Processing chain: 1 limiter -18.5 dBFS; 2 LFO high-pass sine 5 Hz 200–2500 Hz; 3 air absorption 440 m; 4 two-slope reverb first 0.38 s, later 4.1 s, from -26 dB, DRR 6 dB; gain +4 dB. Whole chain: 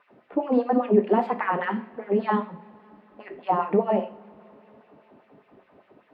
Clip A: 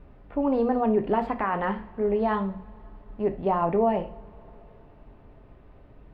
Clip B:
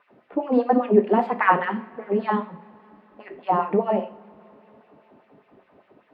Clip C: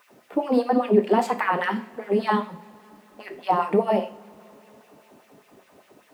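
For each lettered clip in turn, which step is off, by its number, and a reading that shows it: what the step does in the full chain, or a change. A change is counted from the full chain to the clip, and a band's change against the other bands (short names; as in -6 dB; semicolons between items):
2, crest factor change -3.5 dB; 1, 2 kHz band +4.0 dB; 3, 2 kHz band +3.0 dB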